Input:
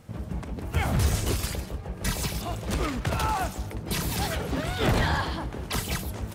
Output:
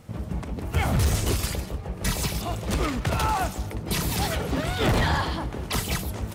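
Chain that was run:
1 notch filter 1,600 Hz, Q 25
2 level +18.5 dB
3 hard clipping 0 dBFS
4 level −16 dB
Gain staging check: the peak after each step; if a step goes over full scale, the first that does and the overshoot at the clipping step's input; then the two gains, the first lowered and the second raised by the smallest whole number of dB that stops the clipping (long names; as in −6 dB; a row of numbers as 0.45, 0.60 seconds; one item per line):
−12.0, +6.5, 0.0, −16.0 dBFS
step 2, 6.5 dB
step 2 +11.5 dB, step 4 −9 dB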